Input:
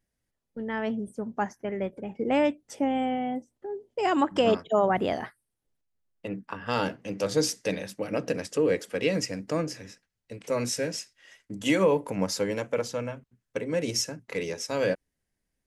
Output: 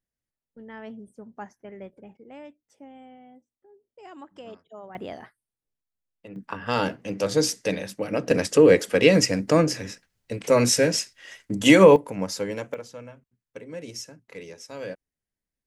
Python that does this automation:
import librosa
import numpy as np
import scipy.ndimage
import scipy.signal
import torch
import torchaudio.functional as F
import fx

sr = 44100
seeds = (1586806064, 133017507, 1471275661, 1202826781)

y = fx.gain(x, sr, db=fx.steps((0.0, -10.0), (2.17, -20.0), (4.95, -8.5), (6.36, 3.0), (8.31, 9.5), (11.96, -1.0), (12.74, -9.0)))